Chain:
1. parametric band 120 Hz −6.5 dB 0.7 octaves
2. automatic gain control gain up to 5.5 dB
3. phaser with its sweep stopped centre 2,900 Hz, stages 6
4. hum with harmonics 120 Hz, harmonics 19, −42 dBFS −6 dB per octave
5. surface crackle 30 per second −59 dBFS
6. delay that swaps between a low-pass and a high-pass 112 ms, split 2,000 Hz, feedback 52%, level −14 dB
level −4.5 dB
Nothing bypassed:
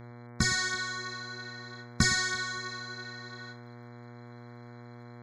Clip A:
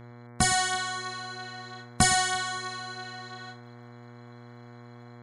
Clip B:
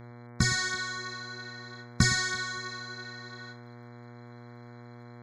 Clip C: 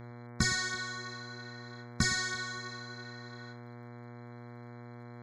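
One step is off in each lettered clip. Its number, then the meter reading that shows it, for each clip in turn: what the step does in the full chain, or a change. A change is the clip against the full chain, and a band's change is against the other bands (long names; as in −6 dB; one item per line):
3, 1 kHz band +9.0 dB
1, 125 Hz band +4.0 dB
2, 500 Hz band +1.5 dB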